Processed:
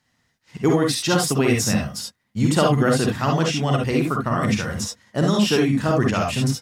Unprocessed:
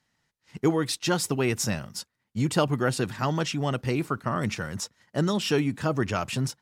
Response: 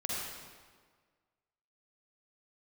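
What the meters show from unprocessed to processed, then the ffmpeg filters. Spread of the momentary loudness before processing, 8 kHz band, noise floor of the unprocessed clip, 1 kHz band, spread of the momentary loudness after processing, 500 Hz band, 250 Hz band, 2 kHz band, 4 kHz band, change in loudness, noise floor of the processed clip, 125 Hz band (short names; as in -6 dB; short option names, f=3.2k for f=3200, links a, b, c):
8 LU, +6.5 dB, -79 dBFS, +6.5 dB, 7 LU, +6.5 dB, +7.5 dB, +6.0 dB, +6.5 dB, +7.0 dB, -71 dBFS, +7.0 dB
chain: -filter_complex "[1:a]atrim=start_sample=2205,atrim=end_sample=3528[a];[0:a][a]afir=irnorm=-1:irlink=0,volume=5.5dB"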